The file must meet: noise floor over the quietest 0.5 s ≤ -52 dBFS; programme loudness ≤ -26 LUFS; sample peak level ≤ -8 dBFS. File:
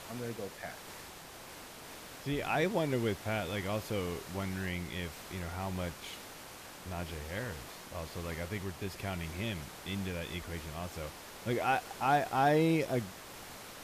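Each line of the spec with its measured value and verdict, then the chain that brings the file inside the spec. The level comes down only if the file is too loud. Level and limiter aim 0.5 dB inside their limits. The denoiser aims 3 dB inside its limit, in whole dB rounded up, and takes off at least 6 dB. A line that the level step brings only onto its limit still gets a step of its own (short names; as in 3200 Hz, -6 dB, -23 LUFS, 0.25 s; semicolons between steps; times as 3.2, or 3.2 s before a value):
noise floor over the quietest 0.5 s -49 dBFS: fail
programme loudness -35.5 LUFS: OK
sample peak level -18.0 dBFS: OK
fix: denoiser 6 dB, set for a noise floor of -49 dBFS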